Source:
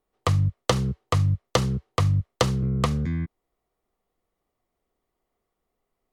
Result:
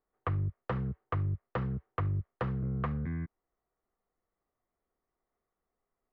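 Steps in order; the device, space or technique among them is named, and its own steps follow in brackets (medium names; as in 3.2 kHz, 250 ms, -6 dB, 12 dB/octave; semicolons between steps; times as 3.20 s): overdriven synthesiser ladder filter (saturation -18.5 dBFS, distortion -13 dB; four-pole ladder low-pass 2.1 kHz, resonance 35%)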